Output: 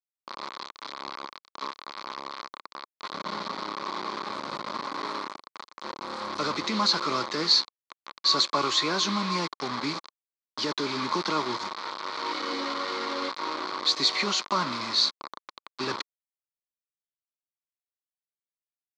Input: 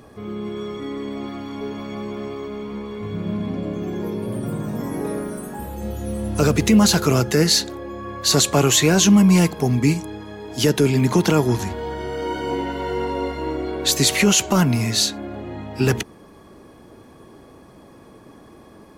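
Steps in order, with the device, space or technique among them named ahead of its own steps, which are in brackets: 12.31–13.29 s: comb 3.7 ms, depth 97%; hand-held game console (bit crusher 4-bit; cabinet simulation 440–4700 Hz, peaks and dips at 450 Hz -8 dB, 710 Hz -9 dB, 1.1 kHz +9 dB, 1.7 kHz -6 dB, 2.8 kHz -10 dB, 4.3 kHz +7 dB); trim -4.5 dB

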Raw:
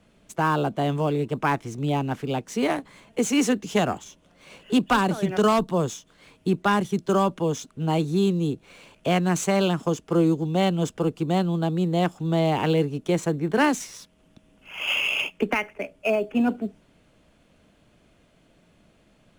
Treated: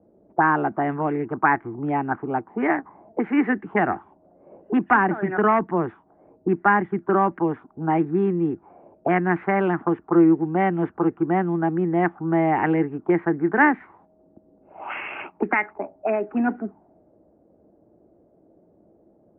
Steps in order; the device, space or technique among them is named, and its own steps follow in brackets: envelope filter bass rig (touch-sensitive low-pass 520–1900 Hz up, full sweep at -20.5 dBFS; cabinet simulation 73–2100 Hz, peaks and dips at 140 Hz -5 dB, 340 Hz +9 dB, 520 Hz -7 dB, 810 Hz +7 dB); trim -1.5 dB

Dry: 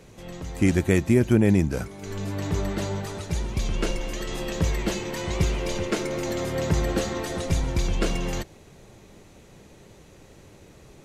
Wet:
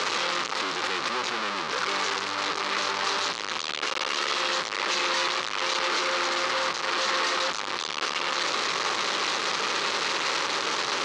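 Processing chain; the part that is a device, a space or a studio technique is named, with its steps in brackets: home computer beeper (one-bit comparator; cabinet simulation 670–5600 Hz, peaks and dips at 680 Hz -9 dB, 1.2 kHz +6 dB, 4.2 kHz +3 dB); trim +4 dB

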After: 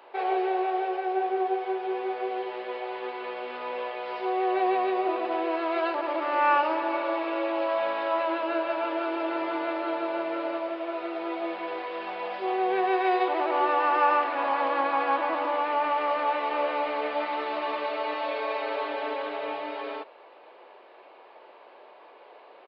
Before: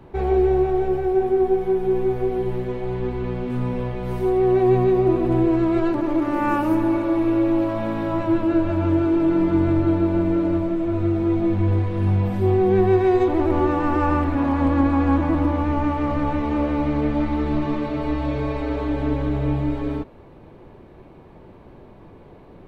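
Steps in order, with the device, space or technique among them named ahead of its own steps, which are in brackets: musical greeting card (resampled via 11.025 kHz; high-pass 540 Hz 24 dB/octave; peaking EQ 2.8 kHz +4.5 dB 0.38 oct); trim +2 dB

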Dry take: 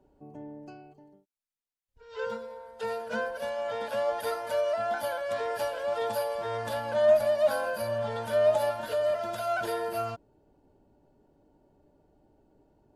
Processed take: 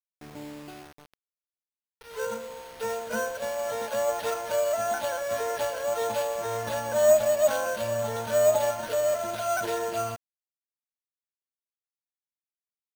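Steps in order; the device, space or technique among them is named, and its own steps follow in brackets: early 8-bit sampler (sample-rate reducer 7.4 kHz, jitter 0%; bit crusher 8-bit); trim +2 dB

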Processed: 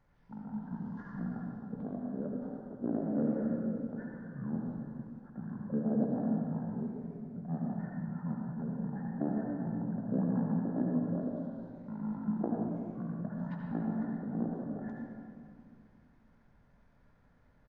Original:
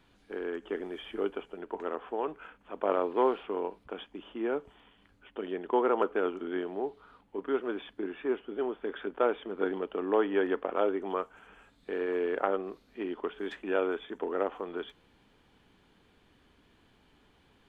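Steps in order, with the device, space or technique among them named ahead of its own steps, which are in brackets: monster voice (pitch shift -9 st; formant shift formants -2.5 st; bass shelf 110 Hz +7 dB; reverberation RT60 2.3 s, pre-delay 65 ms, DRR -1 dB); trim -7.5 dB

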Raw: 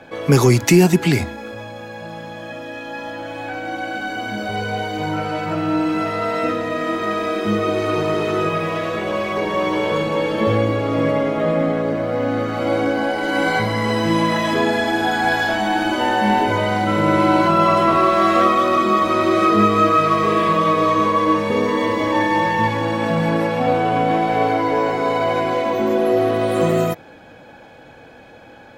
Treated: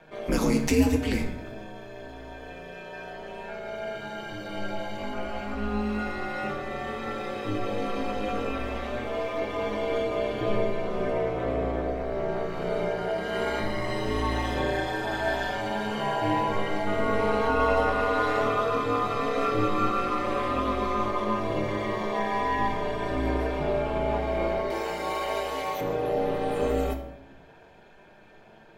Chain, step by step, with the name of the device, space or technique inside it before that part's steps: 24.70–25.81 s: RIAA curve recording; alien voice (ring modulator 100 Hz; flange 0.1 Hz, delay 6.3 ms, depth 9.5 ms, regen +68%); simulated room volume 220 m³, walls mixed, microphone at 0.61 m; trim -4.5 dB

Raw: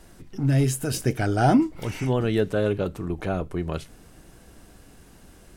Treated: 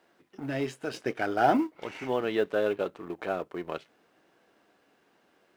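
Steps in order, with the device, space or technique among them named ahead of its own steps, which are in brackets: phone line with mismatched companding (band-pass 390–3300 Hz; companding laws mixed up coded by A)

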